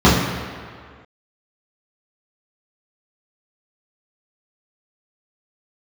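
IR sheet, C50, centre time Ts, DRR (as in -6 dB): 2.0 dB, 79 ms, -10.0 dB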